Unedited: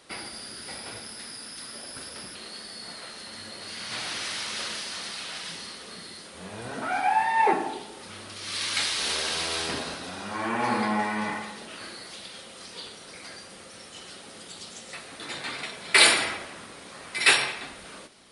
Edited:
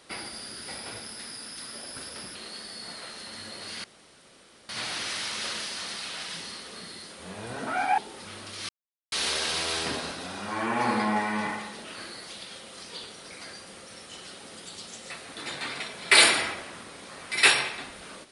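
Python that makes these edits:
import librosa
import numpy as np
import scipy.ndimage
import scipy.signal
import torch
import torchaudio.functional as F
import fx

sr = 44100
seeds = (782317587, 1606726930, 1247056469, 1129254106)

y = fx.edit(x, sr, fx.insert_room_tone(at_s=3.84, length_s=0.85),
    fx.cut(start_s=7.13, length_s=0.68),
    fx.silence(start_s=8.52, length_s=0.43), tone=tone)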